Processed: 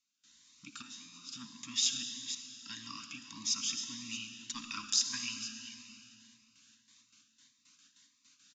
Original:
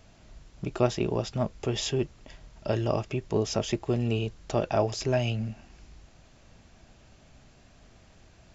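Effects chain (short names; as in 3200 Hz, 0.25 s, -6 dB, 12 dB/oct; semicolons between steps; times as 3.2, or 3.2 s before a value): reverse delay 0.261 s, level -9 dB; low shelf 84 Hz -9 dB; gate with hold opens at -47 dBFS; differentiator; downsampling 16000 Hz; 4.51–5.23 transient shaper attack +9 dB, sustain -11 dB; Chebyshev band-stop 300–1000 Hz, order 5; 0.82–1.29 resonator 87 Hz, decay 0.81 s, harmonics all, mix 90%; small resonant body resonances 260/830/3700 Hz, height 10 dB, ringing for 25 ms; reverb RT60 2.9 s, pre-delay 54 ms, DRR 6.5 dB; cascading phaser rising 1.7 Hz; gain +6 dB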